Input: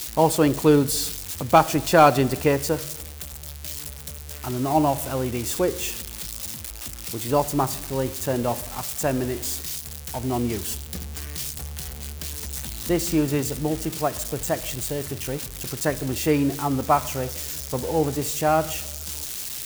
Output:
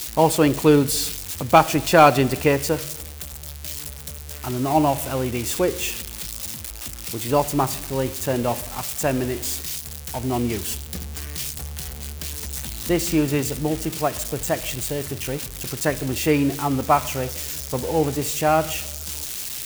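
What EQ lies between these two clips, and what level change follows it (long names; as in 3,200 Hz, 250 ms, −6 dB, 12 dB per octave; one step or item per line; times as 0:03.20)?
dynamic equaliser 2,500 Hz, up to +4 dB, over −42 dBFS, Q 1.7
+1.5 dB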